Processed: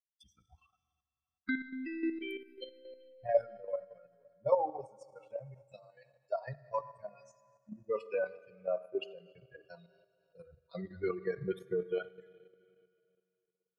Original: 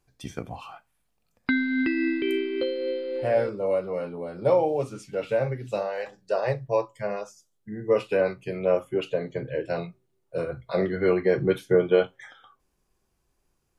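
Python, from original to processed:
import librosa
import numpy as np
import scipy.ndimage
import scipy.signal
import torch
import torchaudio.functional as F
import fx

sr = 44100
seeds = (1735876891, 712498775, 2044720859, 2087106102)

y = fx.bin_expand(x, sr, power=3.0)
y = fx.rider(y, sr, range_db=3, speed_s=2.0)
y = fx.rev_schroeder(y, sr, rt60_s=2.5, comb_ms=38, drr_db=14.5)
y = fx.dynamic_eq(y, sr, hz=900.0, q=1.2, threshold_db=-42.0, ratio=4.0, max_db=6)
y = fx.level_steps(y, sr, step_db=9)
y = fx.high_shelf(y, sr, hz=5200.0, db=-7.0)
y = y * librosa.db_to_amplitude(-3.5)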